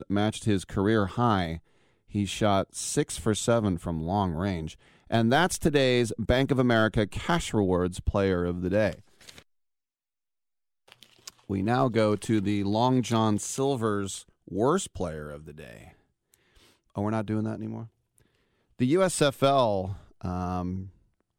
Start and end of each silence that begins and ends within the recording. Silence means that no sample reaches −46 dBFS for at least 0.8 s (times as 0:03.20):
0:09.42–0:10.88